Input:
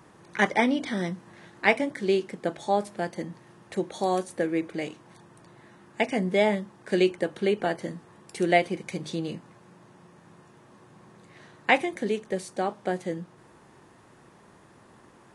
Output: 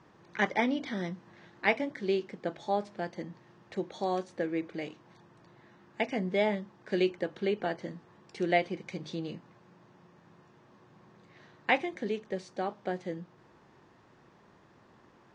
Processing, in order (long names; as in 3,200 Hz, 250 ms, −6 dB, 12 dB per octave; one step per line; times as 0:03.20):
low-pass filter 5,900 Hz 24 dB per octave
level −5.5 dB